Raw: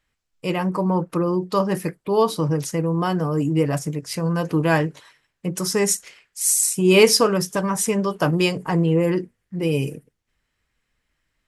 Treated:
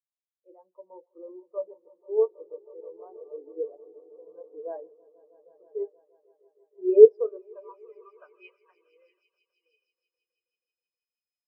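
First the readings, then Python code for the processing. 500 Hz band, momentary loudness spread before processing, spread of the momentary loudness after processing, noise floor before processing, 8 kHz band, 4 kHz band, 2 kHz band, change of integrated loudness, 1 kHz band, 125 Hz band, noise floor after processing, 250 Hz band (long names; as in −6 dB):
−2.5 dB, 10 LU, 26 LU, −76 dBFS, below −40 dB, below −40 dB, below −30 dB, −2.0 dB, below −25 dB, below −40 dB, below −85 dBFS, below −15 dB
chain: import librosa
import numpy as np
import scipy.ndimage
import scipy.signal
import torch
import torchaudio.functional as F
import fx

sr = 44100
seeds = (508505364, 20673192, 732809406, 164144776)

p1 = fx.weighting(x, sr, curve='A')
p2 = p1 + fx.echo_swell(p1, sr, ms=160, loudest=5, wet_db=-11.0, dry=0)
p3 = fx.dynamic_eq(p2, sr, hz=420.0, q=1.3, threshold_db=-36.0, ratio=4.0, max_db=7)
p4 = p3 + 10.0 ** (-45.0 / 20.0) * np.sin(2.0 * np.pi * 5100.0 * np.arange(len(p3)) / sr)
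p5 = fx.filter_sweep_bandpass(p4, sr, from_hz=600.0, to_hz=4300.0, start_s=7.01, end_s=9.75, q=0.95)
p6 = fx.spectral_expand(p5, sr, expansion=2.5)
y = p6 * librosa.db_to_amplitude(2.0)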